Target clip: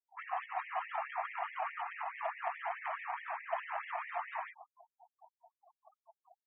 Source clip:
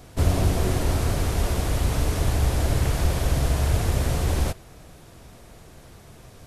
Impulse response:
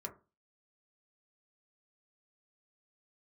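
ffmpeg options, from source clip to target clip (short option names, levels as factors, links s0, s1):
-filter_complex "[0:a]asplit=3[s0][s1][s2];[s0]afade=t=out:st=3.71:d=0.02[s3];[s1]asplit=2[s4][s5];[s5]adelay=48,volume=0.531[s6];[s4][s6]amix=inputs=2:normalize=0,afade=t=in:st=3.71:d=0.02,afade=t=out:st=4.15:d=0.02[s7];[s2]afade=t=in:st=4.15:d=0.02[s8];[s3][s7][s8]amix=inputs=3:normalize=0,asplit=2[s9][s10];[s10]adelay=151,lowpass=f=1100:p=1,volume=0.2,asplit=2[s11][s12];[s12]adelay=151,lowpass=f=1100:p=1,volume=0.42,asplit=2[s13][s14];[s14]adelay=151,lowpass=f=1100:p=1,volume=0.42,asplit=2[s15][s16];[s16]adelay=151,lowpass=f=1100:p=1,volume=0.42[s17];[s9][s11][s13][s15][s17]amix=inputs=5:normalize=0,flanger=delay=1.8:depth=4.7:regen=73:speed=0.65:shape=triangular,asplit=2[s18][s19];[s19]alimiter=limit=0.0944:level=0:latency=1:release=439,volume=1[s20];[s18][s20]amix=inputs=2:normalize=0,highpass=430,lowpass=2300,flanger=delay=18.5:depth=4.1:speed=2.5,adynamicsmooth=sensitivity=3:basefreq=1200,equalizer=f=1500:w=7:g=-8.5,afftfilt=real='re*gte(hypot(re,im),0.00355)':imag='im*gte(hypot(re,im),0.00355)':win_size=1024:overlap=0.75,afftfilt=real='re*gte(b*sr/1024,640*pow(1800/640,0.5+0.5*sin(2*PI*4.7*pts/sr)))':imag='im*gte(b*sr/1024,640*pow(1800/640,0.5+0.5*sin(2*PI*4.7*pts/sr)))':win_size=1024:overlap=0.75,volume=2.24"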